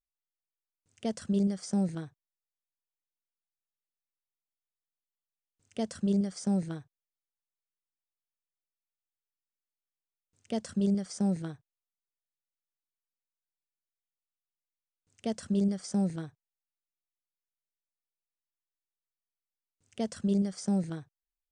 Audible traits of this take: noise floor -94 dBFS; spectral tilt -7.5 dB/oct

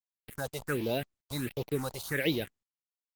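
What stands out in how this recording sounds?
a quantiser's noise floor 6-bit, dither none; phasing stages 4, 1.4 Hz, lowest notch 270–1600 Hz; Opus

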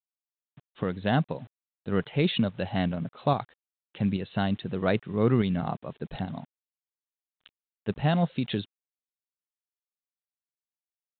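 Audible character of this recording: tremolo saw up 2.4 Hz, depth 45%; a quantiser's noise floor 10-bit, dither none; µ-law

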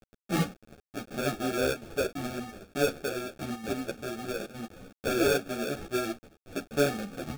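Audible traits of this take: a quantiser's noise floor 8-bit, dither none; chopped level 1.1 Hz, depth 60%, duty 90%; aliases and images of a low sample rate 1000 Hz, jitter 0%; a shimmering, thickened sound

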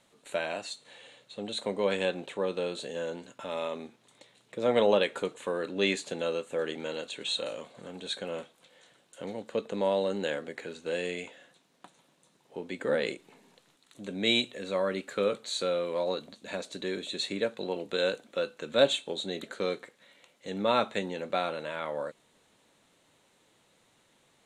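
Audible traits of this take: noise floor -67 dBFS; spectral tilt -4.0 dB/oct

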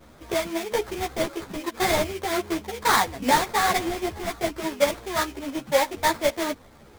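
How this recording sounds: aliases and images of a low sample rate 2800 Hz, jitter 20%; a shimmering, thickened sound

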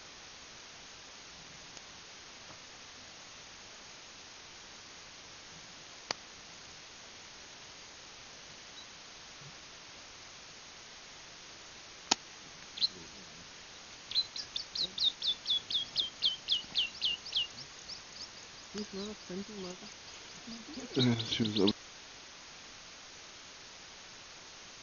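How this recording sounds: tremolo saw up 3.5 Hz, depth 60%; a quantiser's noise floor 8-bit, dither triangular; MP2

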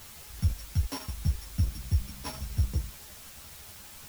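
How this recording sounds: a buzz of ramps at a fixed pitch in blocks of 8 samples; chopped level 12 Hz, depth 60%, duty 65%; a quantiser's noise floor 8-bit, dither triangular; a shimmering, thickened sound

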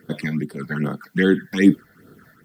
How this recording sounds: phasing stages 8, 2.5 Hz, lowest notch 340–2300 Hz; a quantiser's noise floor 12-bit, dither triangular; noise-modulated level

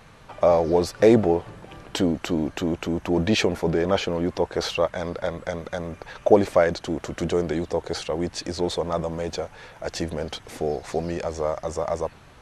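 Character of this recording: noise floor -49 dBFS; spectral tilt -5.0 dB/oct

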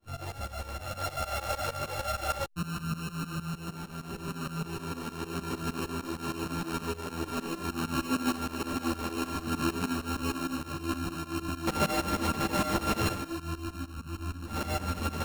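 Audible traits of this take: a buzz of ramps at a fixed pitch in blocks of 32 samples; tremolo saw up 6.5 Hz, depth 95%; a shimmering, thickened sound

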